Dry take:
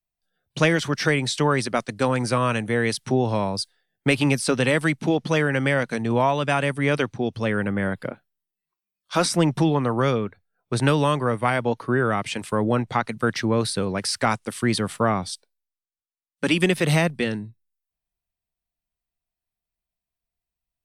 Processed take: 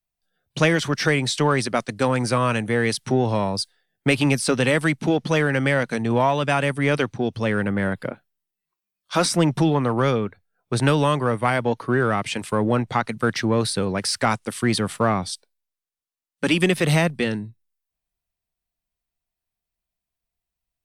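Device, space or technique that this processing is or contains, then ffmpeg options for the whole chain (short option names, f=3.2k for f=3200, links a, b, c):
parallel distortion: -filter_complex "[0:a]asplit=2[a][b];[b]asoftclip=type=hard:threshold=-22.5dB,volume=-12dB[c];[a][c]amix=inputs=2:normalize=0"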